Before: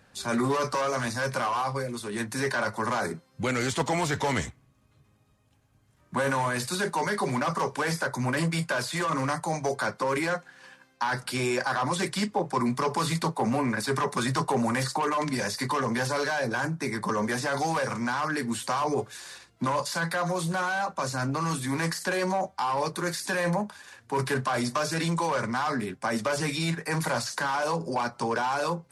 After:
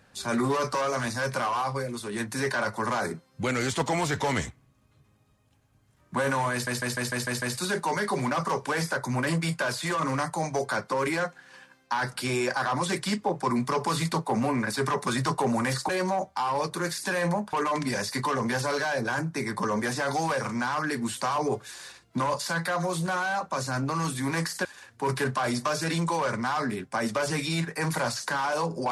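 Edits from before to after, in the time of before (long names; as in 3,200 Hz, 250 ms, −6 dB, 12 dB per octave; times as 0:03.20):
0:06.52: stutter 0.15 s, 7 plays
0:22.11–0:23.75: move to 0:14.99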